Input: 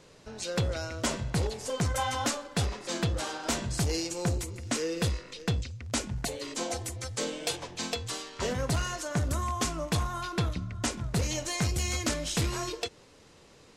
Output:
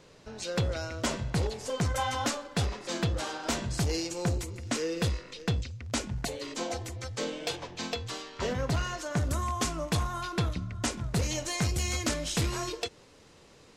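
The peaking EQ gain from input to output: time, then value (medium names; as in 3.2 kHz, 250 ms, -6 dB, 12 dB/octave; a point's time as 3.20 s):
peaking EQ 10 kHz 1 oct
6.33 s -4.5 dB
6.80 s -11.5 dB
8.89 s -11.5 dB
9.29 s -1 dB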